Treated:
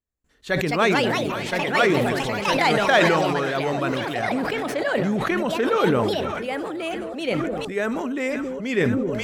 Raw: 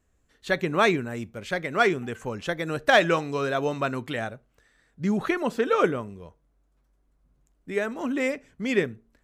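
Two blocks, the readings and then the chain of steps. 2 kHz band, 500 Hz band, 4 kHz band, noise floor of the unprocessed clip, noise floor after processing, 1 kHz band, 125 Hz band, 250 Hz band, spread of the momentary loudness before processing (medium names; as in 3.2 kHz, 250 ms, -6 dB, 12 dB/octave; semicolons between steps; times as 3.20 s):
+4.0 dB, +4.0 dB, +6.5 dB, -69 dBFS, -38 dBFS, +5.0 dB, +5.5 dB, +5.5 dB, 12 LU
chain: gate with hold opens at -59 dBFS; echo whose repeats swap between lows and highs 268 ms, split 810 Hz, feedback 77%, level -13 dB; ever faster or slower copies 316 ms, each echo +4 st, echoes 2; decay stretcher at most 22 dB/s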